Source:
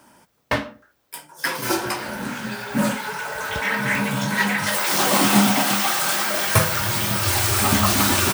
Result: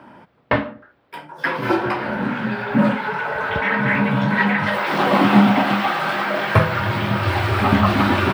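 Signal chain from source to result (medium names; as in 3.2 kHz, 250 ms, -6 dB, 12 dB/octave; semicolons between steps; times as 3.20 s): high-pass 80 Hz; in parallel at +2 dB: compression, threshold -33 dBFS, peak gain reduction 20 dB; on the sum: distance through air 430 m; trim +4 dB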